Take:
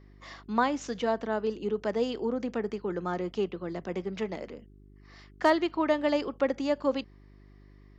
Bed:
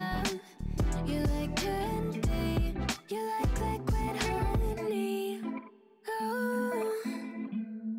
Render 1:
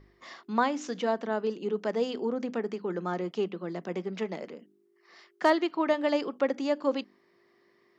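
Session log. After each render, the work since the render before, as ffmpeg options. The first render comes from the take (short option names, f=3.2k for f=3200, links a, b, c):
-af "bandreject=f=50:t=h:w=4,bandreject=f=100:t=h:w=4,bandreject=f=150:t=h:w=4,bandreject=f=200:t=h:w=4,bandreject=f=250:t=h:w=4,bandreject=f=300:t=h:w=4"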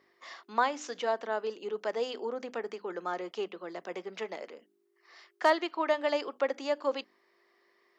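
-af "highpass=490"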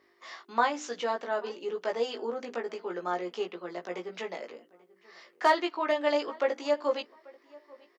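-filter_complex "[0:a]asplit=2[a][b];[b]adelay=17,volume=-3dB[c];[a][c]amix=inputs=2:normalize=0,asplit=2[d][e];[e]adelay=838,lowpass=f=2.5k:p=1,volume=-23.5dB,asplit=2[f][g];[g]adelay=838,lowpass=f=2.5k:p=1,volume=0.24[h];[d][f][h]amix=inputs=3:normalize=0"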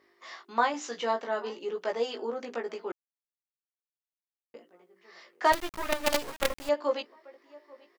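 -filter_complex "[0:a]asettb=1/sr,asplit=3[a][b][c];[a]atrim=end=0.724[d];[b]atrim=start=0.72:end=1.59,asetpts=PTS-STARTPTS,afade=t=in:d=0.004:c=qsin,afade=t=out:st=0.866:d=0.004:c=qsin,asplit=2[e][f];[f]adelay=18,volume=-7dB[g];[e][g]amix=inputs=2:normalize=0,atrim=end_sample=38367[h];[c]atrim=start=1.586[i];[d][h]acrossfade=d=0.004:c1=hsin:c2=qsin[j];[j][i]acrossfade=d=0.004:c1=qsin:c2=hsin,asettb=1/sr,asplit=3[k][l][m];[k]atrim=end=5.524[n];[l]atrim=start=5.52:end=6.69,asetpts=PTS-STARTPTS,afade=t=in:d=0.004:c=qsin,afade=t=out:st=1.166:d=0.004:c=qsin,acrusher=bits=4:dc=4:mix=0:aa=0.000001[o];[m]atrim=start=6.686[p];[n][o]acrossfade=d=0.004:c1=hsin:c2=qsin[q];[q][p]acrossfade=d=0.004:c1=qsin:c2=hsin,asplit=3[r][s][t];[r]atrim=end=2.92,asetpts=PTS-STARTPTS,afade=t=out:st=2.916:d=0.004:c=hsin[u];[s]atrim=start=2.92:end=4.54,asetpts=PTS-STARTPTS,volume=0[v];[t]atrim=start=4.54,asetpts=PTS-STARTPTS,afade=t=in:d=0.004:c=hsin[w];[u][v][w]concat=n=3:v=0:a=1"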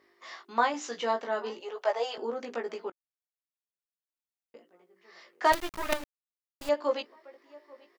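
-filter_complex "[0:a]asettb=1/sr,asplit=3[a][b][c];[a]atrim=end=1.604[d];[b]atrim=start=1.6:end=2.18,asetpts=PTS-STARTPTS,afade=t=in:d=0.004:c=qsin,afade=t=out:st=0.576:d=0.004:c=qsin,highpass=f=700:t=q:w=2.2[e];[c]atrim=start=2.176[f];[d][e]acrossfade=d=0.004:c1=hsin:c2=qsin[g];[g][f]acrossfade=d=0.004:c1=qsin:c2=hsin,asplit=4[h][i][j][k];[h]atrim=end=2.9,asetpts=PTS-STARTPTS,afade=t=out:st=2.896:d=0.004:c=hsin:silence=0.0891251[l];[i]atrim=start=2.9:end=6.04,asetpts=PTS-STARTPTS,afade=t=in:d=2.64:silence=0.0891251,afade=t=out:st=3.136:d=0.004:c=hsin[m];[j]atrim=start=6.04:end=6.61,asetpts=PTS-STARTPTS,volume=0[n];[k]atrim=start=6.61,asetpts=PTS-STARTPTS,afade=t=in:d=0.004:c=hsin[o];[l][m][n][o]concat=n=4:v=0:a=1"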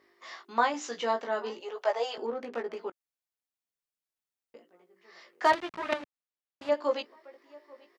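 -filter_complex "[0:a]asettb=1/sr,asplit=3[a][b][c];[a]atrim=end=2.264[d];[b]atrim=start=2.26:end=2.77,asetpts=PTS-STARTPTS,afade=t=in:d=0.004:c=qsin,afade=t=out:st=0.506:d=0.004:c=qsin,adynamicsmooth=sensitivity=7:basefreq=2.5k[e];[c]atrim=start=2.766[f];[d][e]acrossfade=d=0.004:c1=hsin:c2=qsin[g];[g][f]acrossfade=d=0.004:c1=qsin:c2=hsin,asettb=1/sr,asplit=3[h][i][j];[h]atrim=end=5.514[k];[i]atrim=start=5.51:end=6.72,asetpts=PTS-STARTPTS,afade=t=in:d=0.004:c=qsin,afade=t=out:st=1.206:d=0.004:c=qsin,highpass=140,lowpass=3.5k[l];[j]atrim=start=6.716[m];[k][l]acrossfade=d=0.004:c1=hsin:c2=qsin[n];[n][m]acrossfade=d=0.004:c1=qsin:c2=hsin"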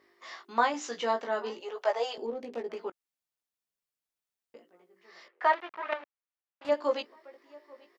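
-filter_complex "[0:a]asettb=1/sr,asplit=3[a][b][c];[a]atrim=end=2.134[d];[b]atrim=start=2.13:end=2.7,asetpts=PTS-STARTPTS,afade=t=in:d=0.004:c=qsin,afade=t=out:st=0.566:d=0.004:c=qsin,equalizer=f=1.4k:t=o:w=1.1:g=-12.5[e];[c]atrim=start=2.696[f];[d][e]acrossfade=d=0.004:c1=hsin:c2=qsin[g];[g][f]acrossfade=d=0.004:c1=qsin:c2=hsin,asettb=1/sr,asplit=3[h][i][j];[h]atrim=end=5.284[k];[i]atrim=start=5.28:end=6.65,asetpts=PTS-STARTPTS,afade=t=in:d=0.004:c=qsin,afade=t=out:st=1.366:d=0.004:c=qsin,highpass=590,lowpass=2.4k[l];[j]atrim=start=6.646[m];[k][l]acrossfade=d=0.004:c1=hsin:c2=qsin[n];[n][m]acrossfade=d=0.004:c1=qsin:c2=hsin"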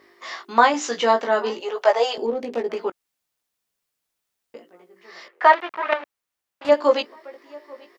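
-af "volume=11dB,alimiter=limit=-1dB:level=0:latency=1"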